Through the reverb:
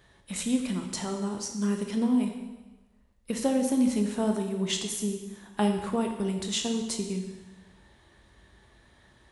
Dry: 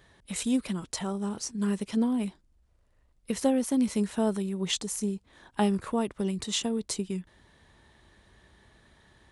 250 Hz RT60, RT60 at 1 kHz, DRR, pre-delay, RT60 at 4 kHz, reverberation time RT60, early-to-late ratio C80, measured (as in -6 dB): 1.2 s, 1.2 s, 3.0 dB, 7 ms, 1.1 s, 1.2 s, 8.0 dB